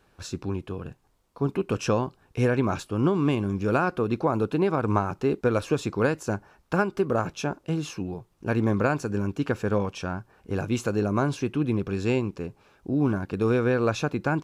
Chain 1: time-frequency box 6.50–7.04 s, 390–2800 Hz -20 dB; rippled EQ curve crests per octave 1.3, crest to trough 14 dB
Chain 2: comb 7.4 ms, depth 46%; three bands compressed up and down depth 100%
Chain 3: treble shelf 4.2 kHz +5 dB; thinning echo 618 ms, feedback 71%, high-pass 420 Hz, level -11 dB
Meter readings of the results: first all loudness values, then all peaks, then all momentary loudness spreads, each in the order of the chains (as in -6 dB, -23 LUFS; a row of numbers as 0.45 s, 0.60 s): -24.5 LUFS, -25.0 LUFS, -26.5 LUFS; -7.0 dBFS, -4.0 dBFS, -8.5 dBFS; 11 LU, 6 LU, 9 LU